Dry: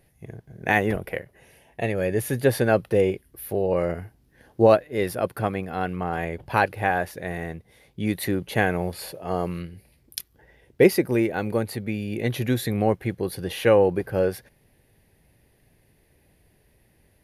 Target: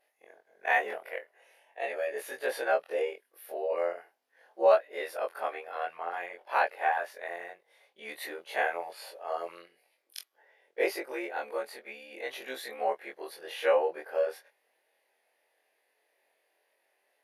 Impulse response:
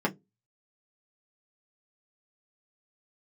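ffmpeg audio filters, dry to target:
-af "afftfilt=real='re':imag='-im':win_size=2048:overlap=0.75,highpass=f=540:w=0.5412,highpass=f=540:w=1.3066,aemphasis=mode=reproduction:type=cd"

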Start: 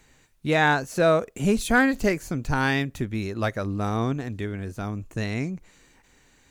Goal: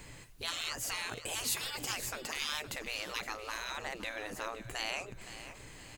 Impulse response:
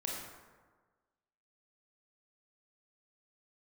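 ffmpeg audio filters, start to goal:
-filter_complex "[0:a]equalizer=f=110:t=o:w=0.21:g=10.5,afftfilt=real='re*lt(hypot(re,im),0.0631)':imag='im*lt(hypot(re,im),0.0631)':win_size=1024:overlap=0.75,asplit=2[a][b];[b]acompressor=threshold=-53dB:ratio=6,volume=2.5dB[c];[a][c]amix=inputs=2:normalize=0,aecho=1:1:562|1124|1686|2248:0.224|0.0895|0.0358|0.0143,asetrate=48000,aresample=44100"

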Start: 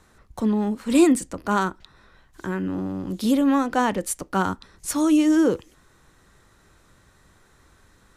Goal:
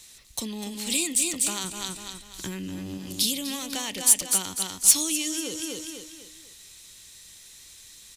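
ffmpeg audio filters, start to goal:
-filter_complex "[0:a]asettb=1/sr,asplit=3[a][b][c];[a]atrim=end=1.644[d];[b]atrim=start=1.64:end=2.98,asetpts=PTS-STARTPTS,afade=t=in:d=0.004:c=qsin,afade=t=out:st=1.336:d=0.004:c=qsin,lowshelf=f=290:g=10.5[e];[c]atrim=start=2.976[f];[d][e]acrossfade=d=0.004:c1=hsin:c2=qsin[g];[g][f]acrossfade=d=0.004:c1=qsin:c2=hsin,aecho=1:1:247|494|741|988:0.398|0.147|0.0545|0.0202,acompressor=threshold=-24dB:ratio=6,aexciter=amount=5.4:drive=9.9:freq=2.2k,volume=-8dB"

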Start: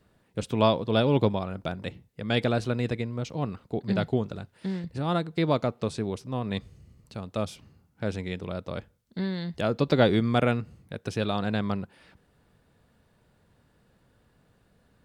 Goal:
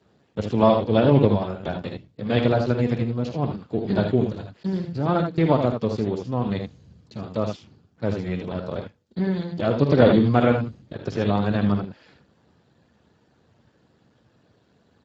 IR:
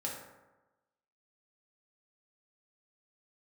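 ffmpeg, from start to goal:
-filter_complex "[0:a]acrossover=split=4500[a][b];[b]acompressor=threshold=-57dB:ratio=4:attack=1:release=60[c];[a][c]amix=inputs=2:normalize=0,aecho=1:1:49|78:0.316|0.501,volume=4.5dB" -ar 16000 -c:a libspeex -b:a 8k

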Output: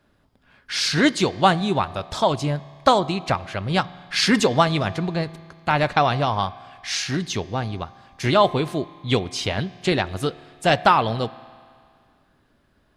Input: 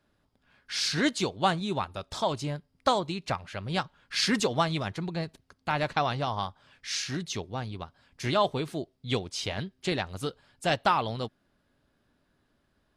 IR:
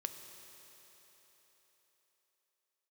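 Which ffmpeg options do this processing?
-filter_complex "[0:a]asplit=2[a][b];[1:a]atrim=start_sample=2205,asetrate=83790,aresample=44100,lowpass=4k[c];[b][c]afir=irnorm=-1:irlink=0,volume=-1dB[d];[a][d]amix=inputs=2:normalize=0,volume=6dB"

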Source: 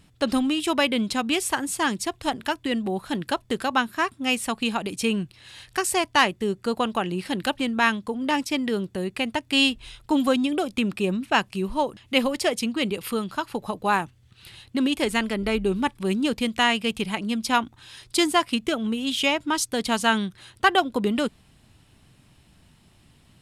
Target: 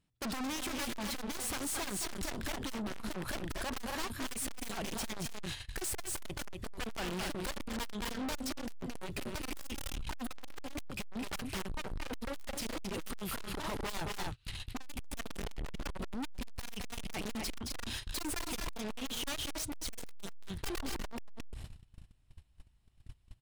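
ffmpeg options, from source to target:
-af "aeval=exprs='0.075*(abs(mod(val(0)/0.075+3,4)-2)-1)':c=same,aecho=1:1:218.7|256.6:0.355|0.316,asubboost=boost=11.5:cutoff=57,agate=range=-31dB:threshold=-39dB:ratio=16:detection=peak,acompressor=threshold=-27dB:ratio=8,aeval=exprs='(tanh(178*val(0)+0.35)-tanh(0.35))/178':c=same,volume=9.5dB"

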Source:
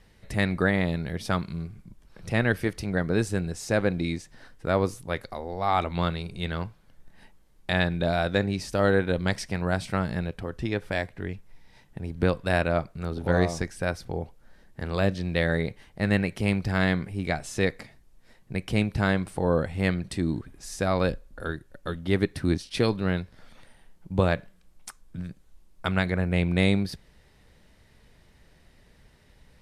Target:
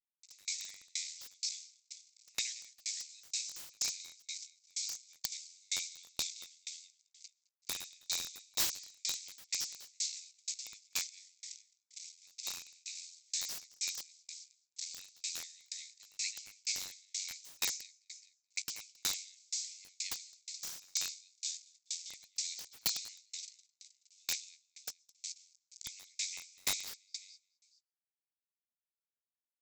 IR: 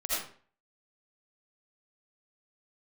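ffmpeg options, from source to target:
-filter_complex "[0:a]aresample=16000,acrusher=bits=6:mix=0:aa=0.000001,aresample=44100,aexciter=amount=10.3:drive=8.3:freq=4.5k,aemphasis=mode=reproduction:type=75kf,aecho=1:1:213|426|639|852:0.355|0.135|0.0512|0.0195,acontrast=90,asuperpass=centerf=4400:order=20:qfactor=0.72,asplit=2[a][b];[b]adelay=17,volume=-13dB[c];[a][c]amix=inputs=2:normalize=0,asplit=2[d][e];[1:a]atrim=start_sample=2205,adelay=50[f];[e][f]afir=irnorm=-1:irlink=0,volume=-27.5dB[g];[d][g]amix=inputs=2:normalize=0,aeval=exprs='(mod(6.68*val(0)+1,2)-1)/6.68':c=same,aeval=exprs='val(0)*pow(10,-37*if(lt(mod(2.1*n/s,1),2*abs(2.1)/1000),1-mod(2.1*n/s,1)/(2*abs(2.1)/1000),(mod(2.1*n/s,1)-2*abs(2.1)/1000)/(1-2*abs(2.1)/1000))/20)':c=same,volume=-4dB"

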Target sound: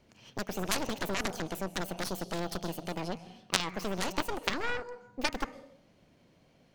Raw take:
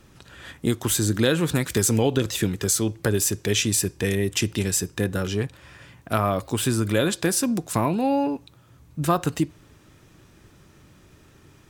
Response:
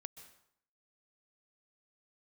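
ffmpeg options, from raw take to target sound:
-filter_complex "[0:a]asetrate=76440,aresample=44100,asplit=2[a][b];[1:a]atrim=start_sample=2205,lowpass=6.9k[c];[b][c]afir=irnorm=-1:irlink=0,volume=12dB[d];[a][d]amix=inputs=2:normalize=0,aeval=exprs='1.5*(cos(1*acos(clip(val(0)/1.5,-1,1)))-cos(1*PI/2))+0.596*(cos(3*acos(clip(val(0)/1.5,-1,1)))-cos(3*PI/2))+0.237*(cos(4*acos(clip(val(0)/1.5,-1,1)))-cos(4*PI/2))+0.0376*(cos(6*acos(clip(val(0)/1.5,-1,1)))-cos(6*PI/2))':c=same,volume=-7dB"

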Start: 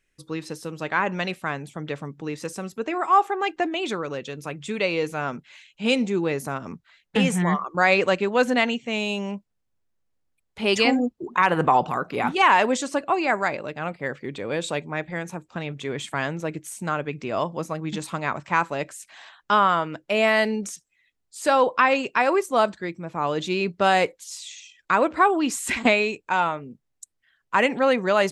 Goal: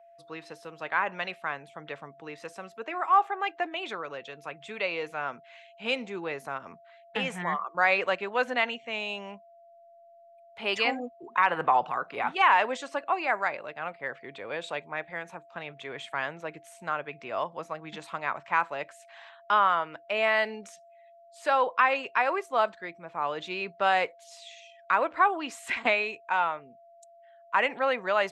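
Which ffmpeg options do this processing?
-filter_complex "[0:a]aeval=exprs='val(0)+0.00447*sin(2*PI*680*n/s)':c=same,acrossover=split=540 3700:gain=0.2 1 0.2[a][b][c];[a][b][c]amix=inputs=3:normalize=0,volume=-3dB"

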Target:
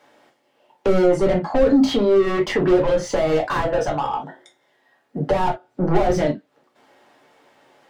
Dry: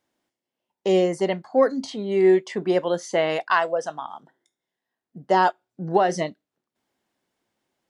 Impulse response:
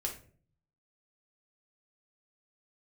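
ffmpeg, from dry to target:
-filter_complex "[0:a]asplit=2[a][b];[b]highpass=f=720:p=1,volume=31dB,asoftclip=type=tanh:threshold=-7dB[c];[a][c]amix=inputs=2:normalize=0,lowpass=f=1.4k:p=1,volume=-6dB[d];[1:a]atrim=start_sample=2205,atrim=end_sample=4410,asetrate=66150,aresample=44100[e];[d][e]afir=irnorm=-1:irlink=0,acrossover=split=330[f][g];[g]acompressor=threshold=-31dB:ratio=2.5[h];[f][h]amix=inputs=2:normalize=0,volume=5.5dB"

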